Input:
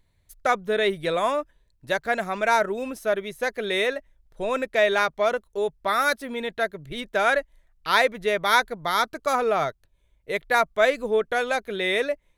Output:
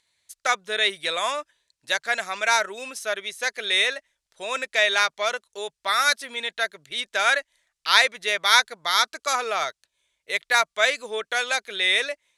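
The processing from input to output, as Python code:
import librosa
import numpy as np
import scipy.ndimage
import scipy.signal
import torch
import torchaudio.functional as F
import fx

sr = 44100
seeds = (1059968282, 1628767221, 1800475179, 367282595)

y = fx.weighting(x, sr, curve='ITU-R 468')
y = F.gain(torch.from_numpy(y), -1.5).numpy()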